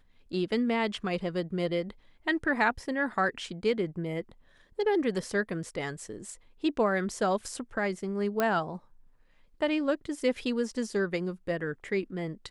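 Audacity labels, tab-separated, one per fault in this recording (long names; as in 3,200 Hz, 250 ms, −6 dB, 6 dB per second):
8.400000	8.400000	click −13 dBFS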